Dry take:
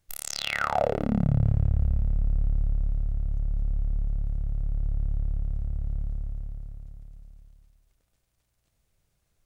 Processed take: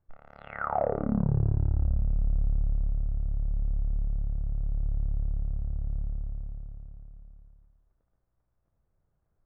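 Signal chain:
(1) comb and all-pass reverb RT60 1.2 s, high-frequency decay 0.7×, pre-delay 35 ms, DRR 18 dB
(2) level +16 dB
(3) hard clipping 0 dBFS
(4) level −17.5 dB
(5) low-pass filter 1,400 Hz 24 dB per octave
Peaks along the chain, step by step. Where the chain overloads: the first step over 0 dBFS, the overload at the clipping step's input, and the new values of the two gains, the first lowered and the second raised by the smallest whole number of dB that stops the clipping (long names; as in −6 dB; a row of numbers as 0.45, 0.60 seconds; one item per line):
−10.5, +5.5, 0.0, −17.5, −16.0 dBFS
step 2, 5.5 dB
step 2 +10 dB, step 4 −11.5 dB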